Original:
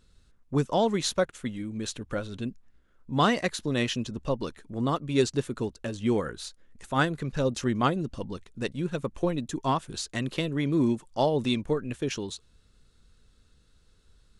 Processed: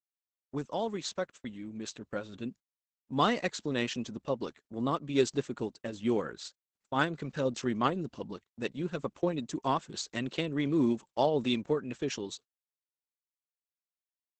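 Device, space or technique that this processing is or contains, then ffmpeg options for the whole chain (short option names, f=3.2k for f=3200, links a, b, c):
video call: -af "highpass=160,dynaudnorm=f=160:g=21:m=7dB,agate=range=-39dB:threshold=-38dB:ratio=16:detection=peak,volume=-8.5dB" -ar 48000 -c:a libopus -b:a 12k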